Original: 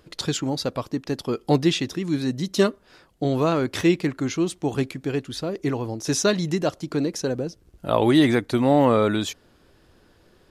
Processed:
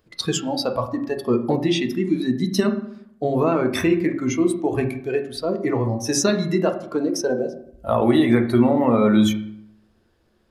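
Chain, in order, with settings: spectral noise reduction 14 dB; compressor, threshold -21 dBFS, peak gain reduction 8.5 dB; on a send: air absorption 360 m + reverb RT60 0.70 s, pre-delay 4 ms, DRR 4.5 dB; on the sum: gain +4.5 dB

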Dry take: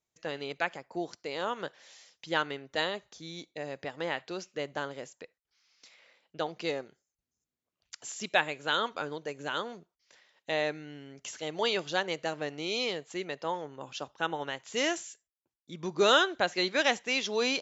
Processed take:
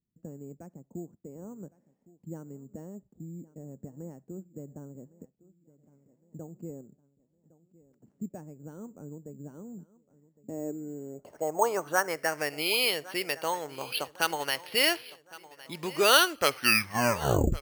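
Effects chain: tape stop at the end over 1.43 s; in parallel at -2 dB: compressor, threshold -35 dBFS, peak gain reduction 15.5 dB; on the sum: dynamic EQ 200 Hz, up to -6 dB, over -44 dBFS, Q 0.84; low-pass sweep 210 Hz -> 2900 Hz, 10.31–12.66; on a send: feedback echo 1.11 s, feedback 47%, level -20 dB; on the sum: careless resampling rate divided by 6×, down filtered, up hold

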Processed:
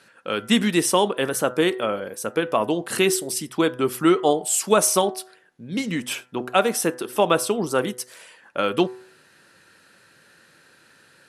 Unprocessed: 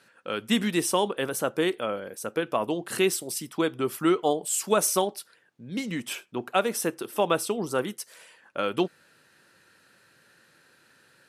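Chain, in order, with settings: de-hum 125 Hz, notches 16; gain +5.5 dB; MP2 128 kbps 44100 Hz

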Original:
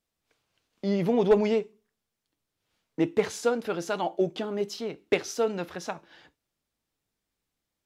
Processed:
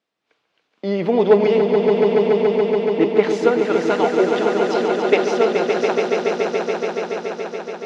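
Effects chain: BPF 250–3700 Hz; swelling echo 0.142 s, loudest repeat 5, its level -6.5 dB; gain +8 dB

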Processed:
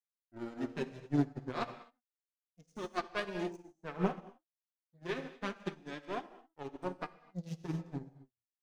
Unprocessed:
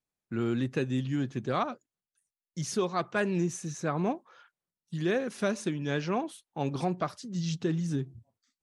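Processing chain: Wiener smoothing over 15 samples; HPF 54 Hz 12 dB/oct; in parallel at +2.5 dB: limiter -23.5 dBFS, peak gain reduction 9 dB; on the sum: power-law curve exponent 2; flange 0.31 Hz, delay 1.6 ms, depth 7 ms, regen +2%; on a send at -2 dB: reverb, pre-delay 3 ms; on the sum: upward expander 2.5:1, over -46 dBFS; gain +1.5 dB

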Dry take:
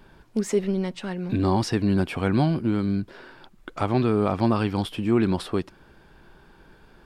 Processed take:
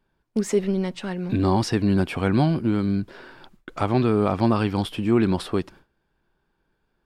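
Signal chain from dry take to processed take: gate with hold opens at -39 dBFS; gain +1.5 dB

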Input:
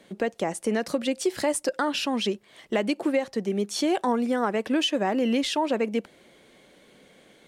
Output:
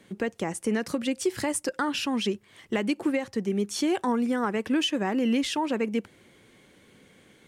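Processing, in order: fifteen-band EQ 100 Hz +11 dB, 630 Hz -8 dB, 4000 Hz -4 dB

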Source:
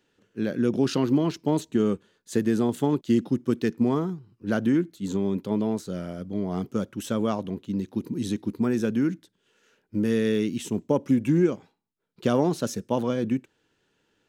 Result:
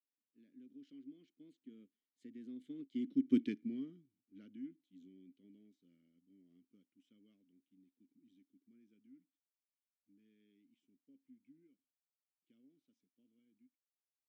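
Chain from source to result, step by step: Doppler pass-by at 3.36, 16 m/s, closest 1.4 m; vowel filter i; high shelf 5300 Hz +8 dB; gain +2 dB

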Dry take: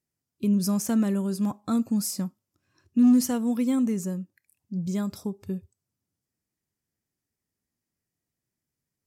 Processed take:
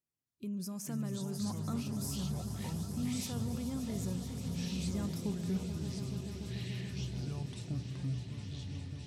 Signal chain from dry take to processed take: limiter -23.5 dBFS, peak gain reduction 10.5 dB; vocal rider; swelling echo 0.144 s, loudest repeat 5, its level -12.5 dB; echoes that change speed 0.269 s, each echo -6 st, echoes 3; gain -8 dB

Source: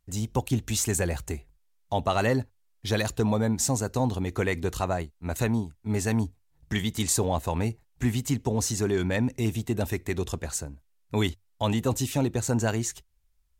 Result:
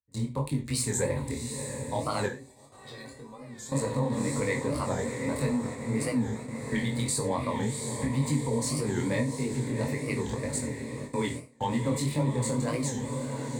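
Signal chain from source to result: Wiener smoothing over 9 samples; ripple EQ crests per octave 0.97, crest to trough 12 dB; on a send: diffused feedback echo 0.713 s, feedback 64%, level -9 dB; on the sum: gate with hold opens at -24 dBFS; frequency shift +13 Hz; limiter -16.5 dBFS, peak gain reduction 8.5 dB; 2.27–3.72 resonator 380 Hz, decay 0.2 s, harmonics all, mix 90%; non-linear reverb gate 0.13 s falling, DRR 4.5 dB; chorus 1.8 Hz, delay 19.5 ms, depth 6.6 ms; record warp 45 rpm, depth 160 cents

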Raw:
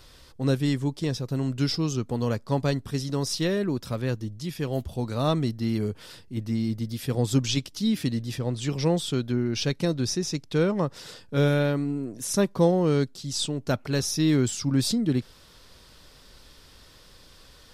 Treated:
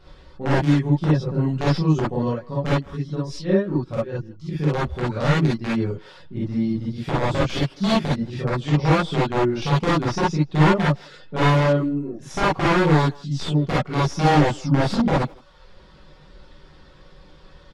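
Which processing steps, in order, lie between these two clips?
reverb removal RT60 0.7 s; comb 5.4 ms, depth 38%; 2.25–4.49 tremolo 4.7 Hz, depth 81%; wrapped overs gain 17.5 dB; tape spacing loss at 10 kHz 27 dB; speakerphone echo 0.16 s, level -21 dB; non-linear reverb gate 80 ms rising, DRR -8 dB

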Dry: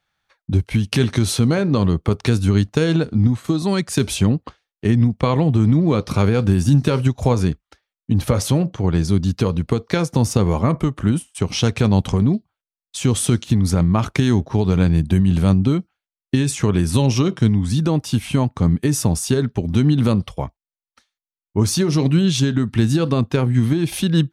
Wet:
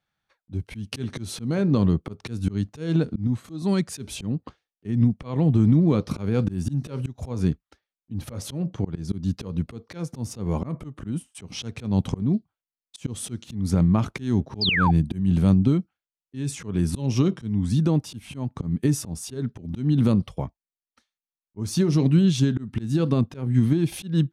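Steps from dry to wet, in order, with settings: bell 200 Hz +7 dB 2.4 oct; auto swell 0.213 s; painted sound fall, 14.61–14.91, 720–5200 Hz -14 dBFS; gain -8.5 dB

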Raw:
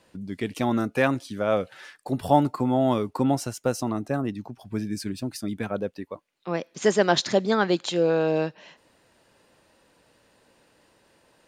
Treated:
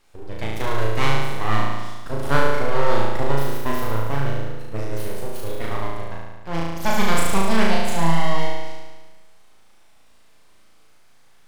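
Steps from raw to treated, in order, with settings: full-wave rectifier; on a send: flutter echo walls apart 6.2 m, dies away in 1.3 s

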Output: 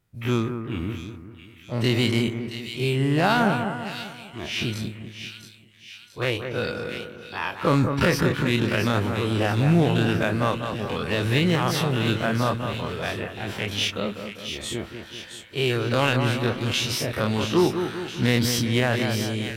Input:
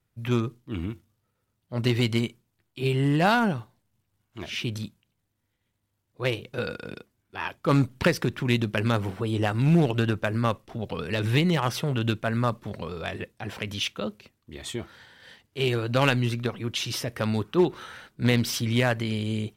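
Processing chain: spectral dilation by 60 ms; split-band echo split 2000 Hz, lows 0.197 s, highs 0.672 s, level -8 dB; maximiser +8 dB; gain -8.5 dB

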